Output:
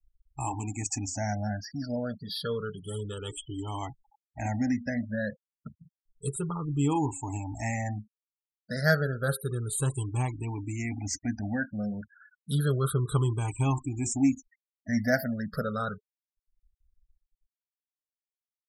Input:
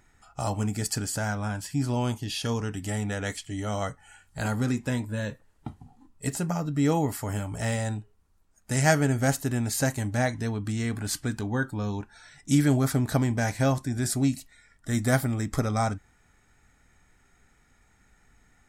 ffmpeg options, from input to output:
ffmpeg -i in.wav -af "afftfilt=real='re*pow(10,21/40*sin(2*PI*(0.66*log(max(b,1)*sr/1024/100)/log(2)-(-0.3)*(pts-256)/sr)))':imag='im*pow(10,21/40*sin(2*PI*(0.66*log(max(b,1)*sr/1024/100)/log(2)-(-0.3)*(pts-256)/sr)))':win_size=1024:overlap=0.75,flanger=delay=4.5:depth=4:regen=-87:speed=0.16:shape=sinusoidal,afftfilt=real='re*gte(hypot(re,im),0.0178)':imag='im*gte(hypot(re,im),0.0178)':win_size=1024:overlap=0.75,volume=-3dB" out.wav

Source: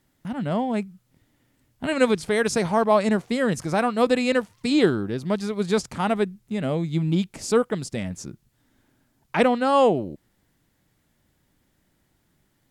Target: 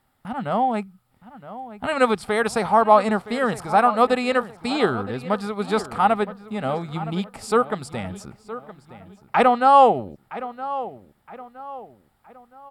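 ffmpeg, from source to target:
ffmpeg -i in.wav -filter_complex "[0:a]equalizer=frequency=160:width_type=o:width=0.33:gain=-7,equalizer=frequency=315:width_type=o:width=0.33:gain=-9,equalizer=frequency=800:width_type=o:width=0.33:gain=11,equalizer=frequency=1250:width_type=o:width=0.33:gain=10,equalizer=frequency=6300:width_type=o:width=0.33:gain=-12,asplit=2[link_01][link_02];[link_02]adelay=967,lowpass=frequency=3000:poles=1,volume=-14.5dB,asplit=2[link_03][link_04];[link_04]adelay=967,lowpass=frequency=3000:poles=1,volume=0.4,asplit=2[link_05][link_06];[link_06]adelay=967,lowpass=frequency=3000:poles=1,volume=0.4,asplit=2[link_07][link_08];[link_08]adelay=967,lowpass=frequency=3000:poles=1,volume=0.4[link_09];[link_03][link_05][link_07][link_09]amix=inputs=4:normalize=0[link_10];[link_01][link_10]amix=inputs=2:normalize=0" out.wav

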